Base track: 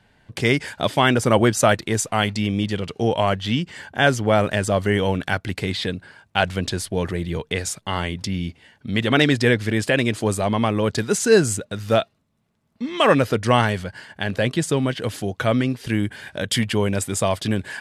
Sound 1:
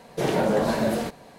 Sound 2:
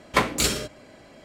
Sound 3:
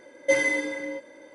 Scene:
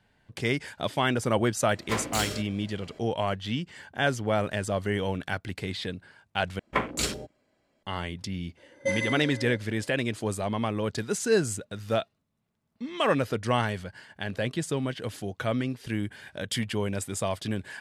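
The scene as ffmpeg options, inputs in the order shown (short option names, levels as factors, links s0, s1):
-filter_complex "[2:a]asplit=2[s0][s1];[0:a]volume=0.376[s2];[s0]asoftclip=type=tanh:threshold=0.0944[s3];[s1]afwtdn=0.0251[s4];[s2]asplit=2[s5][s6];[s5]atrim=end=6.594[s7];[s4]atrim=end=1.24,asetpts=PTS-STARTPTS,volume=0.531[s8];[s6]atrim=start=7.826[s9];[s3]atrim=end=1.24,asetpts=PTS-STARTPTS,volume=0.631,afade=t=in:d=0.004:c=hsin,afade=t=out:st=1.236:d=0.004:c=hsin,adelay=1750[s10];[3:a]atrim=end=1.34,asetpts=PTS-STARTPTS,volume=0.473,afade=t=in:d=0.004:c=hsin,afade=t=out:st=1.336:d=0.004:c=hsin,adelay=8570[s11];[s7][s8]acrossfade=d=0.004:c1=hsin:c2=hsin[s12];[s12][s9]acrossfade=d=0.004:c1=hsin:c2=hsin[s13];[s13][s10][s11]amix=inputs=3:normalize=0"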